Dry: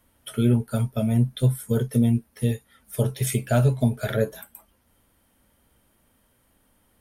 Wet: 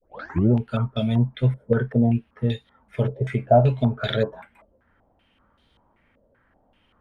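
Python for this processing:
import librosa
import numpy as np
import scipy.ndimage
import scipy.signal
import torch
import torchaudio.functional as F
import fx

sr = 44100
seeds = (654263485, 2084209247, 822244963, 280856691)

y = fx.tape_start_head(x, sr, length_s=0.5)
y = fx.filter_held_lowpass(y, sr, hz=5.2, low_hz=560.0, high_hz=3700.0)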